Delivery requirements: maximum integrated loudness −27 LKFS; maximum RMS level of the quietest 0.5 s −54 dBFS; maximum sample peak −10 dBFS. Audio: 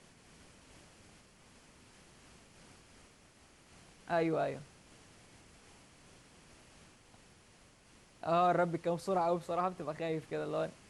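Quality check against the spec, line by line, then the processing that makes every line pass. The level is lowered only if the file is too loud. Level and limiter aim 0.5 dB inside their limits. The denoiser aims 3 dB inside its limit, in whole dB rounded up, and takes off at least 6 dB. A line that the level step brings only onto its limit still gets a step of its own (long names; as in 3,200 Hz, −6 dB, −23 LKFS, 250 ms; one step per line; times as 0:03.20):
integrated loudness −34.5 LKFS: in spec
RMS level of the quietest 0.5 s −62 dBFS: in spec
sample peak −19.0 dBFS: in spec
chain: no processing needed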